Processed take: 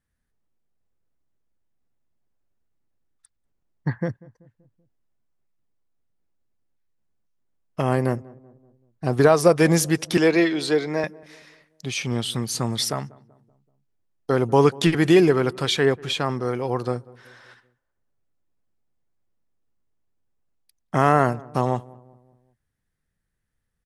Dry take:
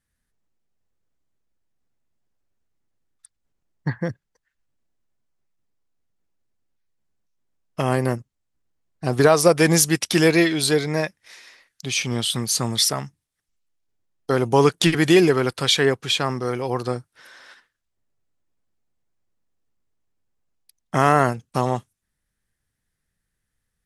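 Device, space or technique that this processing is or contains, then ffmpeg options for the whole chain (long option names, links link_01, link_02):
behind a face mask: -filter_complex "[0:a]highshelf=frequency=2300:gain=-7.5,asettb=1/sr,asplit=3[link_01][link_02][link_03];[link_01]atrim=end=10.174[link_04];[link_02]atrim=start=10.17:end=11.04,asetpts=PTS-STARTPTS,afade=type=in:duration=0.004:curve=qsin,afade=type=out:start_time=0.866:duration=0.004:curve=qsin,acrossover=split=200 7800:gain=0.2 1 0.2[link_05][link_06][link_07];[link_05][link_06][link_07]amix=inputs=3:normalize=0[link_08];[link_03]atrim=start=11.036[link_09];[link_04][link_08]acrossfade=duration=0.004:curve1=hsin:curve2=qsin[link_10];[link_10][link_09]acrossfade=duration=0.004:curve1=qsin:curve2=hsin,asplit=2[link_11][link_12];[link_12]adelay=191,lowpass=frequency=1000:poles=1,volume=-21.5dB,asplit=2[link_13][link_14];[link_14]adelay=191,lowpass=frequency=1000:poles=1,volume=0.51,asplit=2[link_15][link_16];[link_16]adelay=191,lowpass=frequency=1000:poles=1,volume=0.51,asplit=2[link_17][link_18];[link_18]adelay=191,lowpass=frequency=1000:poles=1,volume=0.51[link_19];[link_11][link_13][link_15][link_17][link_19]amix=inputs=5:normalize=0"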